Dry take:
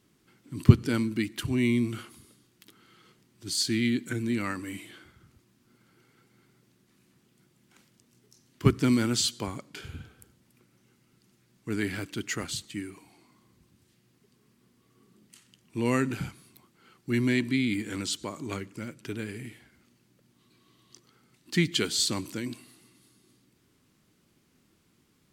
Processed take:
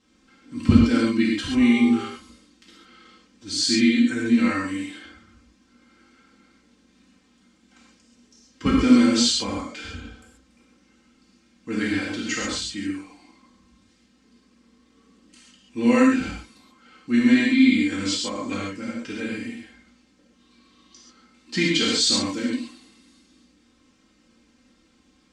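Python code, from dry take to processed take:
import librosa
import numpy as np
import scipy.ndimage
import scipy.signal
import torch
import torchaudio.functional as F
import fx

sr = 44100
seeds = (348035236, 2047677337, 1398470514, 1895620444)

y = scipy.signal.sosfilt(scipy.signal.butter(4, 7500.0, 'lowpass', fs=sr, output='sos'), x)
y = y + 0.92 * np.pad(y, (int(3.8 * sr / 1000.0), 0))[:len(y)]
y = fx.dmg_buzz(y, sr, base_hz=400.0, harmonics=3, level_db=-39.0, tilt_db=0, odd_only=False, at=(1.59, 2.01), fade=0.02)
y = fx.rev_gated(y, sr, seeds[0], gate_ms=160, shape='flat', drr_db=-4.5)
y = y * librosa.db_to_amplitude(-1.0)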